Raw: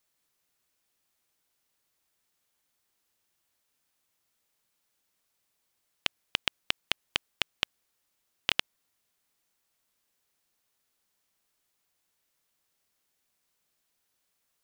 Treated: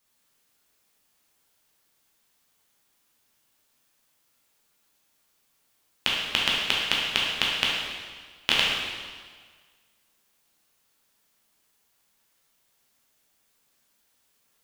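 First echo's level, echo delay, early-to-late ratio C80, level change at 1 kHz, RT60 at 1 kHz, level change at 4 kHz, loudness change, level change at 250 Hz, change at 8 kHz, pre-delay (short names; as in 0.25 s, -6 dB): none, none, 2.0 dB, +9.0 dB, 1.6 s, +8.5 dB, +7.5 dB, +9.5 dB, +8.0 dB, 6 ms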